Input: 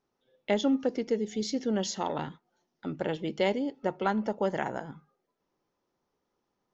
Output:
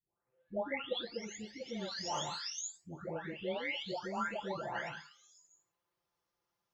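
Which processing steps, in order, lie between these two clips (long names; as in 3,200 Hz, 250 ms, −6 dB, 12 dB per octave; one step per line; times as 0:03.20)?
every frequency bin delayed by itself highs late, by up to 893 ms
high-pass filter 42 Hz
parametric band 270 Hz −12.5 dB 2.6 octaves
level +1.5 dB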